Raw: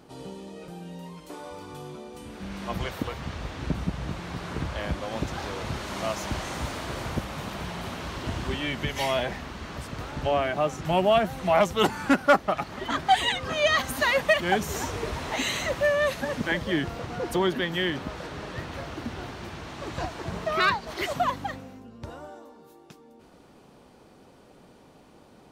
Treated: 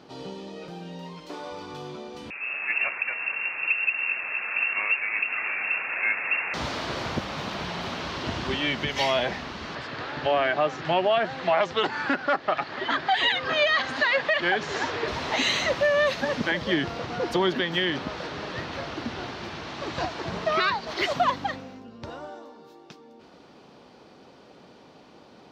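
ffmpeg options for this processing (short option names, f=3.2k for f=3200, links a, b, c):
-filter_complex "[0:a]asettb=1/sr,asplit=3[a][b][c];[a]atrim=end=2.304[d];[b]atrim=start=2.3:end=6.54,asetpts=PTS-STARTPTS,afade=t=in:d=0.004:c=qsin,afade=t=out:st=4.236:d=0.004:c=qsin,lowpass=f=2.4k:t=q:w=0.5098,lowpass=f=2.4k:t=q:w=0.6013,lowpass=f=2.4k:t=q:w=0.9,lowpass=f=2.4k:t=q:w=2.563,afreqshift=-2800[e];[c]atrim=start=6.536[f];[d][e]acrossfade=d=0.004:c1=hsin:c2=qsin[g];[g][f]acrossfade=d=0.004:c1=qsin:c2=hsin,asettb=1/sr,asplit=3[h][i][j];[h]atrim=end=9.754[k];[i]atrim=start=9.75:end=15.08,asetpts=PTS-STARTPTS,afade=t=in:d=0.004:c=qsin,afade=t=out:st=5.326:d=0.004:c=qsin,highpass=120,equalizer=f=200:t=q:w=4:g=-10,equalizer=f=1.7k:t=q:w=4:g=6,equalizer=f=5.9k:t=q:w=4:g=-7,lowpass=f=6.7k:w=0.5412,lowpass=f=6.7k:w=1.3066[l];[j]atrim=start=15.076[m];[k][l]acrossfade=d=0.004:c1=hsin:c2=qsin[n];[n][m]acrossfade=d=0.004:c1=qsin:c2=hsin,highpass=f=180:p=1,highshelf=f=7k:t=q:w=1.5:g=-13,alimiter=limit=-17dB:level=0:latency=1:release=102,volume=3.5dB"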